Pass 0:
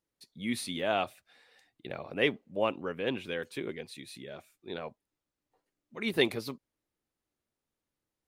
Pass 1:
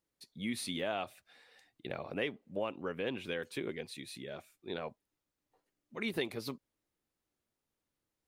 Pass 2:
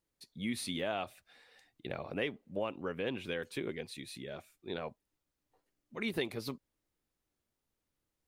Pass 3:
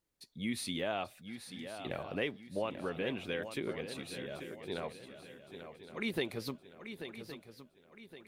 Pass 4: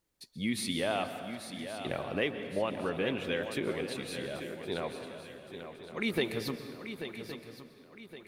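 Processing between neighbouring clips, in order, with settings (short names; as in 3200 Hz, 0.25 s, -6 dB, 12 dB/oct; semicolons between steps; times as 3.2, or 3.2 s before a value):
compressor 4:1, threshold -33 dBFS, peak gain reduction 11 dB
low shelf 74 Hz +8.5 dB
swung echo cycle 1.116 s, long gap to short 3:1, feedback 38%, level -10 dB
plate-style reverb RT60 1.9 s, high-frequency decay 0.7×, pre-delay 0.11 s, DRR 9 dB; gain +4 dB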